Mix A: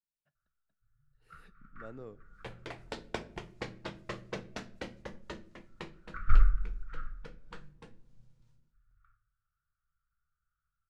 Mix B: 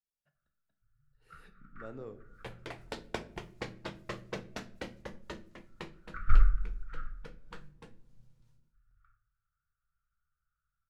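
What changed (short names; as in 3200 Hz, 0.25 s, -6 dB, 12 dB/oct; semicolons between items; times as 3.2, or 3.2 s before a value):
speech: send +11.5 dB; first sound: remove LPF 9300 Hz 12 dB/oct; second sound: add notch 1100 Hz, Q 22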